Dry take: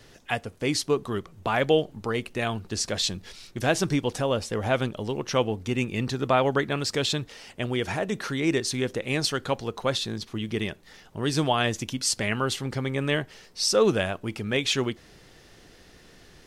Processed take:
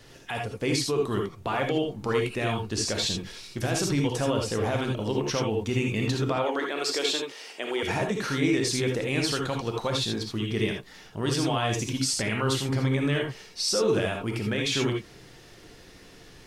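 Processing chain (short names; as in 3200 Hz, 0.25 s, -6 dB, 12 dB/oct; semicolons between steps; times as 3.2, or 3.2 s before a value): 6.36–7.83 HPF 310 Hz 24 dB/oct; limiter -19 dBFS, peak gain reduction 10.5 dB; non-linear reverb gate 0.1 s rising, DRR 1 dB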